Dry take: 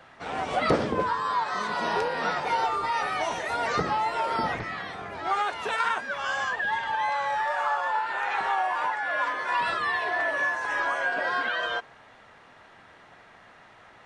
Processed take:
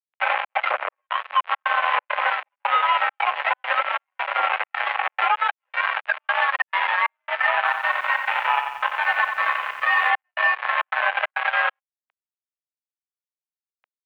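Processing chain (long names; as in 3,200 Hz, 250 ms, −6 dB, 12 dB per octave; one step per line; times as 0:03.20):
comb filter 4 ms, depth 94%
downward compressor 12 to 1, threshold −35 dBFS, peak gain reduction 21 dB
flanger 0.25 Hz, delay 7.6 ms, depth 3.9 ms, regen +1%
harmonic generator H 7 −15 dB, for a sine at −27.5 dBFS
dead-zone distortion −57.5 dBFS
gate pattern ".xxx.xxx..xxxx" 136 BPM −60 dB
single-sideband voice off tune +68 Hz 600–2,700 Hz
boost into a limiter +35.5 dB
0:07.57–0:10.10: feedback echo at a low word length 90 ms, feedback 55%, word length 7 bits, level −7 dB
level −9 dB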